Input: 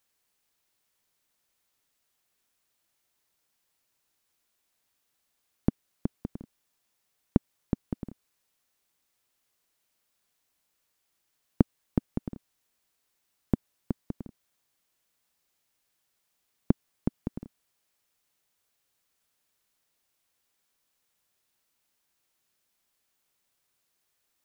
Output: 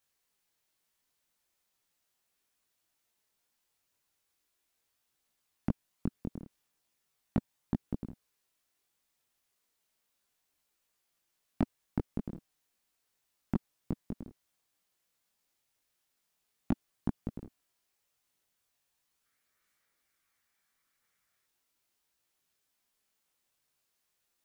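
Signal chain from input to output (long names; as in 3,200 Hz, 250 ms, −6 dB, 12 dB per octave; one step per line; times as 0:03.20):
multi-voice chorus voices 2, 0.38 Hz, delay 20 ms, depth 3.3 ms
hard clipping −19 dBFS, distortion −9 dB
gain on a spectral selection 0:19.25–0:21.46, 1,100–2,400 Hz +7 dB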